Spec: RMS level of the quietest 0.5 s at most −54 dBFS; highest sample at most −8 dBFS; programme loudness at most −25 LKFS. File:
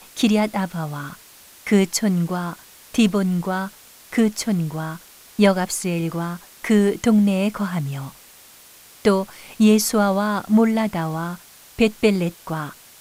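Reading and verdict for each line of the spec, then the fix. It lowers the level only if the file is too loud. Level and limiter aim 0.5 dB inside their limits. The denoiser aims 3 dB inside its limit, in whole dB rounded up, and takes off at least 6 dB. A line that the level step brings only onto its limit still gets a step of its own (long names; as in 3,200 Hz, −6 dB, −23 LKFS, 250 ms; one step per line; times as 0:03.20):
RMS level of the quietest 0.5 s −47 dBFS: out of spec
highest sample −5.0 dBFS: out of spec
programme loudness −20.5 LKFS: out of spec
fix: broadband denoise 6 dB, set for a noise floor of −47 dBFS
level −5 dB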